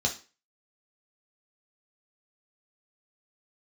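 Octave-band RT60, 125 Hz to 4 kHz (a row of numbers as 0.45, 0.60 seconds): 0.30, 0.35, 0.35, 0.35, 0.35, 0.35 seconds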